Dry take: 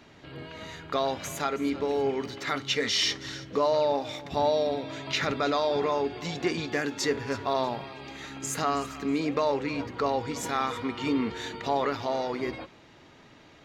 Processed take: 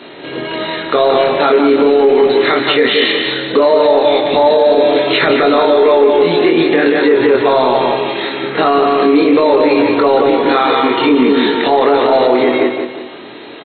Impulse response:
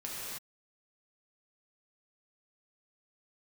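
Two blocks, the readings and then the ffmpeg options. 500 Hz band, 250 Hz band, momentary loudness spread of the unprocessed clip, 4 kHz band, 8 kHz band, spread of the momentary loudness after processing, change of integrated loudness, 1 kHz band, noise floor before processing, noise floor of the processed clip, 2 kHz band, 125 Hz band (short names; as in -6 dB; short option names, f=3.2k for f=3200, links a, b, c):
+19.5 dB, +18.0 dB, 10 LU, +14.5 dB, under -40 dB, 7 LU, +17.5 dB, +16.5 dB, -54 dBFS, -31 dBFS, +17.0 dB, +8.0 dB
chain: -filter_complex "[0:a]aemphasis=mode=production:type=riaa,bandreject=f=383.1:t=h:w=4,bandreject=f=766.2:t=h:w=4,bandreject=f=1.1493k:t=h:w=4,acrossover=split=2600[a][b];[b]acompressor=threshold=-33dB:ratio=4:attack=1:release=60[c];[a][c]amix=inputs=2:normalize=0,equalizer=f=370:w=0.82:g=13,flanger=delay=5:depth=8.7:regen=-78:speed=0.73:shape=triangular,asplit=2[d][e];[e]volume=24.5dB,asoftclip=hard,volume=-24.5dB,volume=-7.5dB[f];[d][f]amix=inputs=2:normalize=0,asplit=2[g][h];[h]adelay=24,volume=-3dB[i];[g][i]amix=inputs=2:normalize=0,asplit=2[j][k];[k]adelay=177,lowpass=f=4.3k:p=1,volume=-5dB,asplit=2[l][m];[m]adelay=177,lowpass=f=4.3k:p=1,volume=0.41,asplit=2[n][o];[o]adelay=177,lowpass=f=4.3k:p=1,volume=0.41,asplit=2[p][q];[q]adelay=177,lowpass=f=4.3k:p=1,volume=0.41,asplit=2[r][s];[s]adelay=177,lowpass=f=4.3k:p=1,volume=0.41[t];[j][l][n][p][r][t]amix=inputs=6:normalize=0,aresample=11025,aresample=44100,alimiter=level_in=17dB:limit=-1dB:release=50:level=0:latency=1,volume=-1.5dB" -ar 16000 -c:a mp2 -b:a 32k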